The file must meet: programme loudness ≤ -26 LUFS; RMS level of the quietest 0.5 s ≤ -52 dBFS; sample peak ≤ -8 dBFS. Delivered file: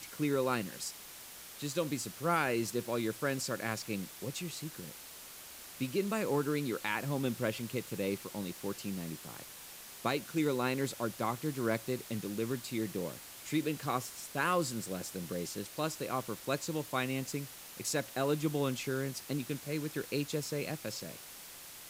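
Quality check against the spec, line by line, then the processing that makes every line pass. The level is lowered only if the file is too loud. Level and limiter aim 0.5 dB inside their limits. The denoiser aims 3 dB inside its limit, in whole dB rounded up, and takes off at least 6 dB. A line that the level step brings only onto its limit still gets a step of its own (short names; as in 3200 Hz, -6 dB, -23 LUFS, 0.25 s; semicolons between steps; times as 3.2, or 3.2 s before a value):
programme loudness -35.5 LUFS: OK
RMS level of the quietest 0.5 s -50 dBFS: fail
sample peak -17.5 dBFS: OK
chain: denoiser 6 dB, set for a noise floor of -50 dBFS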